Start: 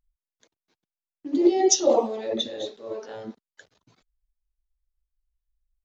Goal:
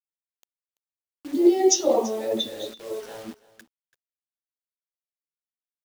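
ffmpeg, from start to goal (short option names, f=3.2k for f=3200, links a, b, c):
-filter_complex "[0:a]flanger=delay=9:depth=3.4:regen=51:speed=0.45:shape=sinusoidal,acrusher=bits=7:mix=0:aa=0.000001,asplit=2[a][b];[b]aecho=0:1:335:0.106[c];[a][c]amix=inputs=2:normalize=0,volume=3.5dB"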